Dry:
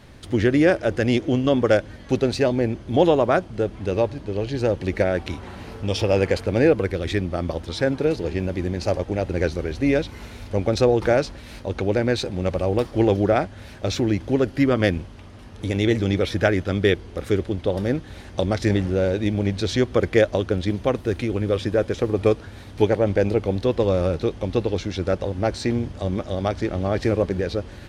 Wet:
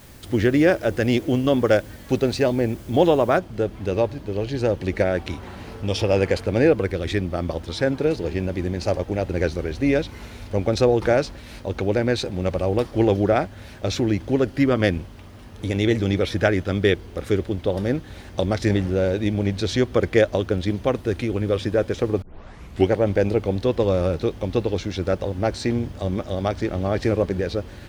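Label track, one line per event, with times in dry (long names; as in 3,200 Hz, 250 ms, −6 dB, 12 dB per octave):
3.380000	3.380000	noise floor change −52 dB −66 dB
22.220000	22.220000	tape start 0.68 s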